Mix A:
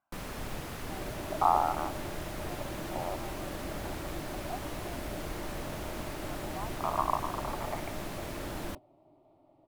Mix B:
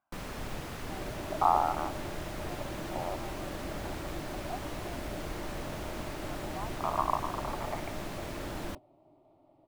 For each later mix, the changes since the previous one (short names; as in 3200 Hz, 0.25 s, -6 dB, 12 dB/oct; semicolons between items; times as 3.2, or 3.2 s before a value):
first sound: add bell 12000 Hz -4.5 dB 0.75 oct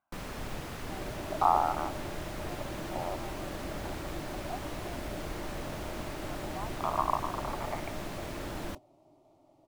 second sound: remove running mean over 7 samples